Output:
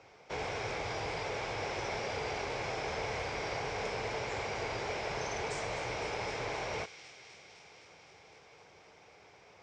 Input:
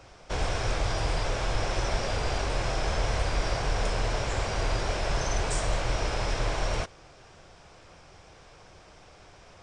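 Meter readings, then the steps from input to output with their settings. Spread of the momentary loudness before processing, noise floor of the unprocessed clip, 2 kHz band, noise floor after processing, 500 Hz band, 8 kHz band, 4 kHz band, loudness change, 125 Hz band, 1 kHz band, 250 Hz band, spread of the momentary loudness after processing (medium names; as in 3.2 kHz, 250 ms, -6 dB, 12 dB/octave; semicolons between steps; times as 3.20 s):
1 LU, -53 dBFS, -3.5 dB, -59 dBFS, -4.5 dB, -9.5 dB, -7.0 dB, -7.0 dB, -13.5 dB, -5.0 dB, -7.5 dB, 17 LU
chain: cabinet simulation 110–7000 Hz, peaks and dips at 440 Hz +8 dB, 840 Hz +6 dB, 2.2 kHz +9 dB; feedback echo behind a high-pass 256 ms, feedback 76%, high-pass 2.7 kHz, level -10 dB; trim -8.5 dB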